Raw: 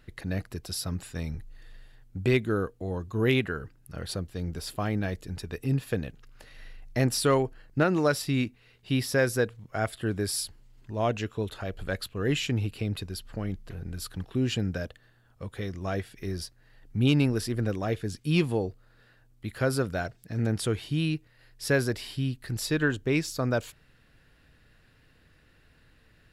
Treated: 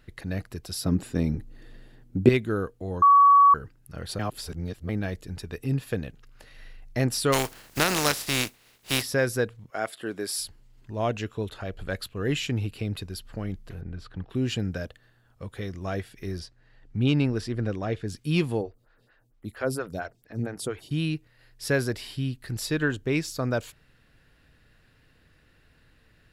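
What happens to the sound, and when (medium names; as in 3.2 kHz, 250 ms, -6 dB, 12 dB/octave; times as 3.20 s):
0.84–2.29 s: peaking EQ 280 Hz +14.5 dB 2 oct
3.02–3.54 s: bleep 1.13 kHz -12 dBFS
4.19–4.89 s: reverse
7.32–9.01 s: spectral contrast reduction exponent 0.37
9.70–10.39 s: high-pass 290 Hz
11.49–11.90 s: treble shelf 10 kHz -6.5 dB
13.81–14.30 s: Bessel low-pass 2.2 kHz
16.39–18.08 s: distance through air 70 m
18.61–20.91 s: lamp-driven phase shifter 4.4 Hz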